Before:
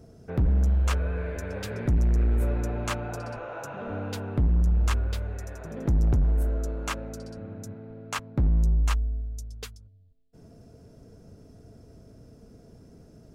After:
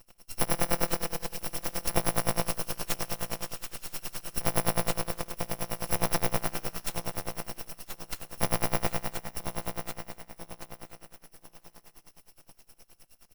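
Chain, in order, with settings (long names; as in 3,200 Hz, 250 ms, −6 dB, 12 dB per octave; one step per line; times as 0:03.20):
samples in bit-reversed order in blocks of 256 samples
high-pass filter 230 Hz 12 dB per octave
high-shelf EQ 4,000 Hz −9.5 dB
in parallel at −11 dB: sample-rate reduction 1,800 Hz, jitter 0%
on the sum: repeating echo 993 ms, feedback 32%, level −7.5 dB
on a send at −8.5 dB: convolution reverb RT60 2.9 s, pre-delay 3 ms
on the sum: full-wave rectification
tremolo with a sine in dB 9.6 Hz, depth 23 dB
level +7.5 dB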